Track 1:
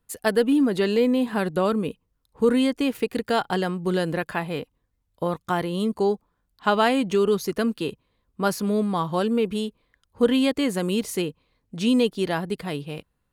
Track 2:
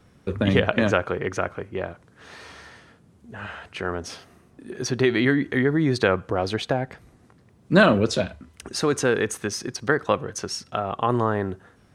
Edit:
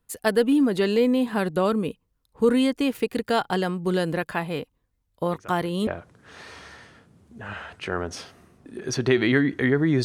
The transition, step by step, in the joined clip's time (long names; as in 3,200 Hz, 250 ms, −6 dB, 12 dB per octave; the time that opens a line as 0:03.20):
track 1
0:05.31: mix in track 2 from 0:01.24 0.56 s −18 dB
0:05.87: continue with track 2 from 0:01.80